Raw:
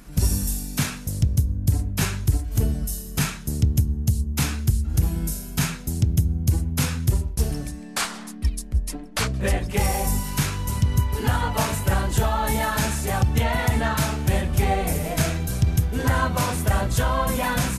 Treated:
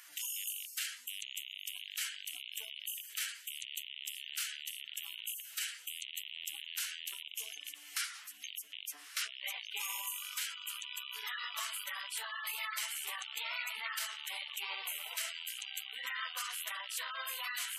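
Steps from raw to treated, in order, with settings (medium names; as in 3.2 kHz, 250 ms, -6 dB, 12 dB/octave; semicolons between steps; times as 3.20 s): rattle on loud lows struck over -28 dBFS, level -22 dBFS; reverse; upward compressor, threshold -29 dBFS; reverse; high-pass 1.5 kHz 12 dB/octave; on a send: echo that smears into a reverb 1182 ms, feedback 46%, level -16 dB; on the sum: formant shift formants +3 st; spectral gate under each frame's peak -15 dB strong; three bands compressed up and down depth 40%; trim -8.5 dB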